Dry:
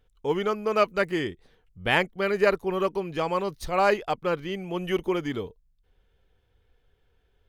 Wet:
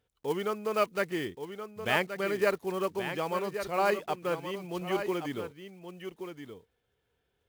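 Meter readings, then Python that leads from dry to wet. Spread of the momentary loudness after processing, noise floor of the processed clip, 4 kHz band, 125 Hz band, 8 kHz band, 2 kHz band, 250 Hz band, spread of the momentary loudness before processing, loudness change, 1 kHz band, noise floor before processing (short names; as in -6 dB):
15 LU, -79 dBFS, -5.0 dB, -6.0 dB, +0.5 dB, -5.0 dB, -5.0 dB, 9 LU, -5.5 dB, -5.0 dB, -68 dBFS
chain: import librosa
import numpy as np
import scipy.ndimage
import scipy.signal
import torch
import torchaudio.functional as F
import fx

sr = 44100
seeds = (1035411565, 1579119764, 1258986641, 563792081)

p1 = fx.block_float(x, sr, bits=5)
p2 = scipy.signal.sosfilt(scipy.signal.butter(2, 100.0, 'highpass', fs=sr, output='sos'), p1)
p3 = p2 + fx.echo_single(p2, sr, ms=1125, db=-9.0, dry=0)
y = p3 * 10.0 ** (-5.5 / 20.0)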